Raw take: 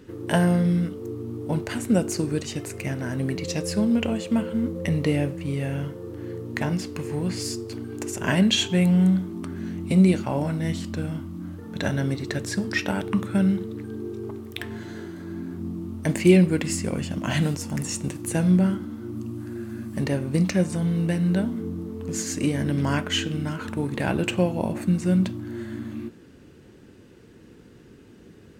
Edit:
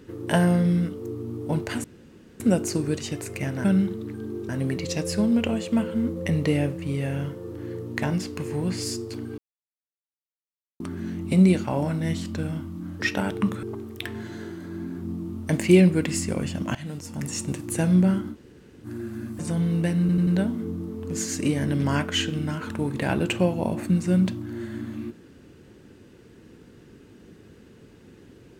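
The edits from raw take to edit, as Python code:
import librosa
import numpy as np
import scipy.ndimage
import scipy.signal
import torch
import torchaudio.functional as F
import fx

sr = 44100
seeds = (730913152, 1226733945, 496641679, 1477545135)

y = fx.edit(x, sr, fx.insert_room_tone(at_s=1.84, length_s=0.56),
    fx.silence(start_s=7.97, length_s=1.42),
    fx.cut(start_s=11.6, length_s=1.12),
    fx.move(start_s=13.34, length_s=0.85, to_s=3.08),
    fx.fade_in_from(start_s=17.31, length_s=0.69, floor_db=-20.5),
    fx.room_tone_fill(start_s=18.9, length_s=0.51, crossfade_s=0.06),
    fx.cut(start_s=19.95, length_s=0.69),
    fx.stutter(start_s=21.25, slice_s=0.09, count=4), tone=tone)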